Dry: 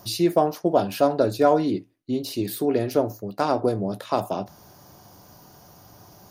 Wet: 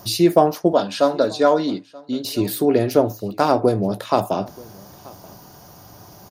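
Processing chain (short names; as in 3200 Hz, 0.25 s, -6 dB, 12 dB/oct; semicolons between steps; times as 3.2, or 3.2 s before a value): 0.73–2.25 speaker cabinet 240–8300 Hz, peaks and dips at 370 Hz -10 dB, 740 Hz -6 dB, 2500 Hz -5 dB, 3700 Hz +5 dB; echo 0.93 s -23.5 dB; gain +5.5 dB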